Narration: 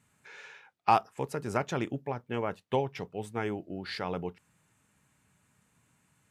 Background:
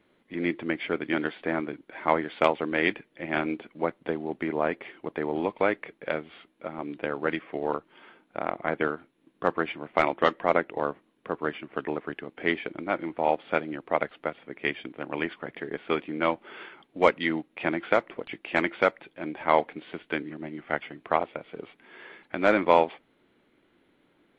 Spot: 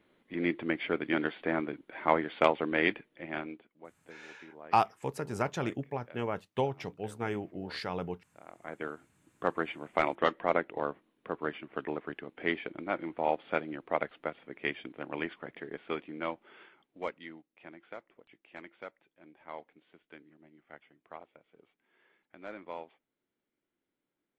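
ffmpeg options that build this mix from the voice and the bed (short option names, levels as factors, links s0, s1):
-filter_complex "[0:a]adelay=3850,volume=0.841[s0];[1:a]volume=5.96,afade=t=out:st=2.83:d=0.88:silence=0.0944061,afade=t=in:st=8.45:d=1:silence=0.125893,afade=t=out:st=15.03:d=2.4:silence=0.133352[s1];[s0][s1]amix=inputs=2:normalize=0"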